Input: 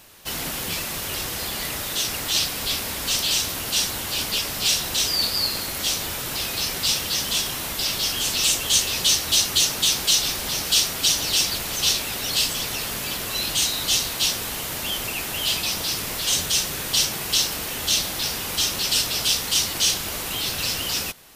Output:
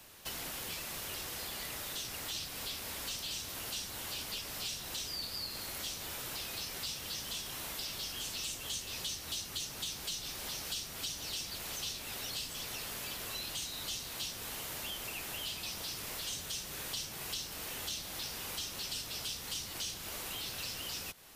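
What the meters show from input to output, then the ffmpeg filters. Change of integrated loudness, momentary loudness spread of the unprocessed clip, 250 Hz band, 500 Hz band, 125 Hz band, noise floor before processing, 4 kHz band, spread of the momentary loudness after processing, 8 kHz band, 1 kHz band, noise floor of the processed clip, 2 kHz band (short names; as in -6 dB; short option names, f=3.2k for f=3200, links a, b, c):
-17.0 dB, 8 LU, -15.5 dB, -15.0 dB, -14.5 dB, -30 dBFS, -17.0 dB, 2 LU, -17.5 dB, -14.5 dB, -45 dBFS, -15.5 dB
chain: -filter_complex "[0:a]acrossover=split=140|310[a][b][c];[a]acompressor=threshold=-48dB:ratio=4[d];[b]acompressor=threshold=-54dB:ratio=4[e];[c]acompressor=threshold=-33dB:ratio=4[f];[d][e][f]amix=inputs=3:normalize=0,volume=-6.5dB"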